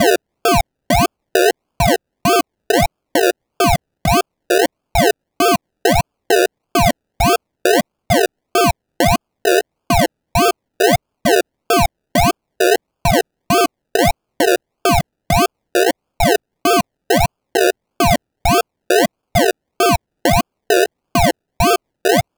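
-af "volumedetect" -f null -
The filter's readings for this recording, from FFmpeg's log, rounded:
mean_volume: -16.6 dB
max_volume: -3.6 dB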